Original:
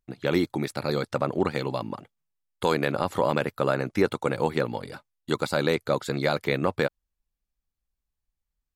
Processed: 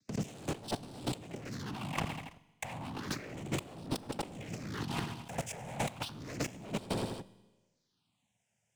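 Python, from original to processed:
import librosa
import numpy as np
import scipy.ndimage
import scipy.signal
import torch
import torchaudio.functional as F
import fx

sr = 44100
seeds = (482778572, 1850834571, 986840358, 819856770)

p1 = fx.rattle_buzz(x, sr, strikes_db=-34.0, level_db=-22.0)
p2 = fx.fixed_phaser(p1, sr, hz=310.0, stages=8)
p3 = fx.noise_vocoder(p2, sr, seeds[0], bands=4)
p4 = fx.phaser_stages(p3, sr, stages=6, low_hz=300.0, high_hz=2000.0, hz=0.32, feedback_pct=5)
p5 = fx.leveller(p4, sr, passes=5)
p6 = fx.low_shelf(p5, sr, hz=240.0, db=4.5)
p7 = p6 + fx.echo_feedback(p6, sr, ms=82, feedback_pct=55, wet_db=-20.5, dry=0)
p8 = fx.over_compress(p7, sr, threshold_db=-37.0, ratio=-1.0)
p9 = fx.rev_schroeder(p8, sr, rt60_s=0.82, comb_ms=28, drr_db=19.5)
p10 = fx.band_squash(p9, sr, depth_pct=70)
y = p10 * librosa.db_to_amplitude(-6.5)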